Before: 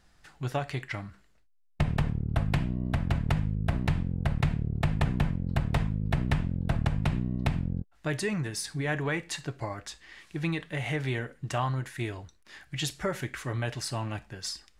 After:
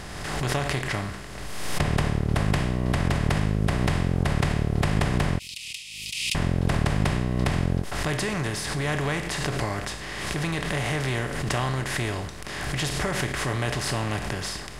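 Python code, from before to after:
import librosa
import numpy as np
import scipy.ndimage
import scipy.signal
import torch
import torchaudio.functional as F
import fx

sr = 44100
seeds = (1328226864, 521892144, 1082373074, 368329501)

y = fx.bin_compress(x, sr, power=0.4)
y = fx.ellip_highpass(y, sr, hz=2500.0, order=4, stop_db=40, at=(5.39, 6.35))
y = fx.pre_swell(y, sr, db_per_s=35.0)
y = F.gain(torch.from_numpy(y), -2.5).numpy()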